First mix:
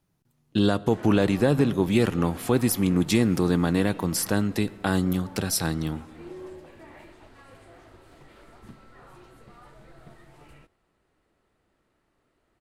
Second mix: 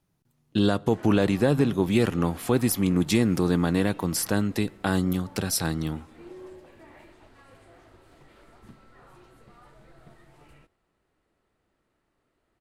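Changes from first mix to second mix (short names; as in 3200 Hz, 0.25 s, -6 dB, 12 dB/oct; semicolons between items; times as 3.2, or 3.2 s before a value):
speech: send -7.5 dB; background -3.0 dB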